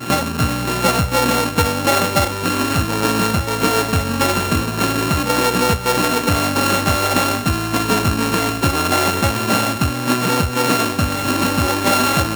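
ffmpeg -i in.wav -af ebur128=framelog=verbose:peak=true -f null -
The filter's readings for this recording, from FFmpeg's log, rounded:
Integrated loudness:
  I:         -17.0 LUFS
  Threshold: -27.0 LUFS
Loudness range:
  LRA:         0.7 LU
  Threshold: -37.0 LUFS
  LRA low:   -17.4 LUFS
  LRA high:  -16.7 LUFS
True peak:
  Peak:       -1.7 dBFS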